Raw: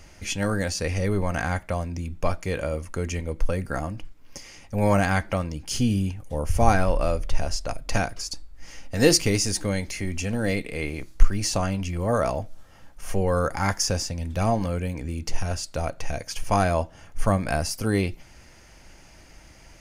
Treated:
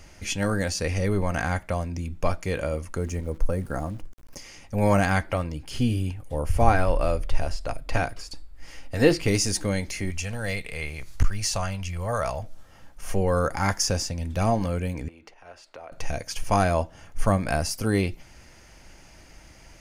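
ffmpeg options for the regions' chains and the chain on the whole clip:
-filter_complex "[0:a]asettb=1/sr,asplit=3[a][b][c];[a]atrim=end=2.984[d];[b]atrim=start=2.98:end=4.37,asetpts=PTS-STARTPTS,afade=t=in:d=0.004:c=qsin,afade=t=out:st=1.386:d=0.004:c=qsin,equalizer=f=3.1k:w=0.82:g=-12,aeval=exprs='val(0)*gte(abs(val(0)),0.00422)':c=same[e];[c]atrim=start=4.366[f];[d][e]acrossfade=d=0.004:c1=hsin:c2=qsin[g];[g][f]acrossfade=d=0.004:c1=qsin:c2=hsin,asettb=1/sr,asplit=3[h][i][j];[h]atrim=end=5.244[k];[i]atrim=start=5.24:end=9.28,asetpts=PTS-STARTPTS,afade=t=in:d=0.004:c=qsin,afade=t=out:st=4.036:d=0.004:c=qsin,bandreject=f=200:w=5.1,acrossover=split=3500[l][m];[m]acompressor=threshold=-38dB:ratio=4:attack=1:release=60[n];[l][n]amix=inputs=2:normalize=0,equalizer=f=6.1k:w=4:g=-6.5[o];[j]atrim=start=9.276[p];[k][o]acrossfade=d=0.004:c1=hsin:c2=qsin[q];[q][p]acrossfade=d=0.004:c1=qsin:c2=hsin,asettb=1/sr,asplit=3[r][s][t];[r]atrim=end=10.104[u];[s]atrim=start=10.1:end=12.43,asetpts=PTS-STARTPTS,afade=t=in:d=0.004:c=qsin,afade=t=out:st=2.326:d=0.004:c=qsin,acompressor=mode=upward:threshold=-27dB:ratio=2.5:attack=3.2:release=140:knee=2.83:detection=peak,equalizer=f=290:t=o:w=1.3:g=-14.5,aeval=exprs='0.335*(abs(mod(val(0)/0.335+3,4)-2)-1)':c=same[v];[t]atrim=start=12.426[w];[u][v]acrossfade=d=0.004:c1=hsin:c2=qsin[x];[x][w]acrossfade=d=0.004:c1=qsin:c2=hsin,asettb=1/sr,asplit=3[y][z][aa];[y]atrim=end=15.084[ab];[z]atrim=start=15.08:end=15.92,asetpts=PTS-STARTPTS,afade=t=in:d=0.004:c=qsin,afade=t=out:st=0.836:d=0.004:c=qsin,acompressor=threshold=-32dB:ratio=16:attack=3.2:release=140:knee=1:detection=peak,acrossover=split=350 3200:gain=0.0891 1 0.112[ac][ad][ae];[ac][ad][ae]amix=inputs=3:normalize=0[af];[aa]atrim=start=15.916[ag];[ab][af]acrossfade=d=0.004:c1=hsin:c2=qsin[ah];[ah][ag]acrossfade=d=0.004:c1=qsin:c2=hsin"

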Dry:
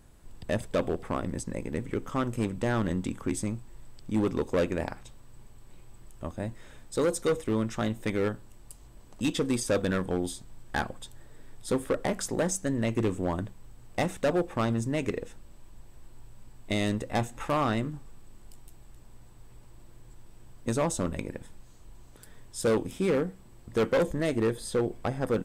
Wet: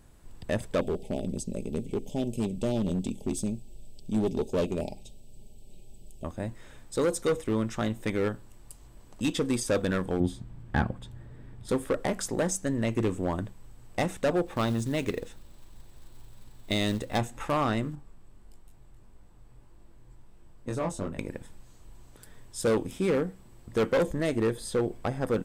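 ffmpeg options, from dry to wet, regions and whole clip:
-filter_complex "[0:a]asettb=1/sr,asplit=3[a][b][c];[a]atrim=end=0.814[d];[b]atrim=start=0.81:end=6.24,asetpts=PTS-STARTPTS,afade=t=in:d=0.004:c=qsin,afade=t=out:st=5.426:d=0.004:c=qsin,asuperstop=centerf=1400:order=8:qfactor=0.76,aecho=1:1:4.9:0.39,atrim=end_sample=239463,aeval=exprs='clip(val(0),-1,0.0596)':c=same[e];[c]atrim=start=6.236[f];[d][e]acrossfade=d=0.004:c1=hsin:c2=qsin[g];[g][f]acrossfade=d=0.004:c1=qsin:c2=hsin,asettb=1/sr,asplit=3[h][i][j];[h]atrim=end=10.204[k];[i]atrim=start=10.2:end=11.69,asetpts=PTS-STARTPTS,afade=t=in:d=0.004:c=qsin,afade=t=out:st=1.486:d=0.004:c=qsin,highpass=f=110:p=1,bass=f=250:g=15,treble=f=4k:g=-12[l];[j]atrim=start=11.686[m];[k][l]acrossfade=d=0.004:c1=hsin:c2=qsin[n];[n][m]acrossfade=d=0.004:c1=qsin:c2=hsin,asettb=1/sr,asplit=3[o][p][q];[o]atrim=end=14.464[r];[p]atrim=start=14.46:end=17.18,asetpts=PTS-STARTPTS,afade=t=in:d=0.004:c=qsin,afade=t=out:st=2.716:d=0.004:c=qsin,acrusher=bits=6:mode=log:mix=0:aa=0.000001,equalizer=f=3.8k:w=2.8:g=6[s];[q]atrim=start=17.176[t];[r][s]acrossfade=d=0.004:c1=hsin:c2=qsin[u];[u][t]acrossfade=d=0.004:c1=qsin:c2=hsin,asettb=1/sr,asplit=3[v][w][x];[v]atrim=end=17.954[y];[w]atrim=start=17.95:end=21.19,asetpts=PTS-STARTPTS,afade=t=in:d=0.004:c=qsin,afade=t=out:st=3.236:d=0.004:c=qsin,highshelf=f=2.7k:g=-6.5,flanger=delay=20:depth=3.9:speed=1.6[z];[x]atrim=start=21.186[aa];[y][z]acrossfade=d=0.004:c1=hsin:c2=qsin[ab];[ab][aa]acrossfade=d=0.004:c1=qsin:c2=hsin"

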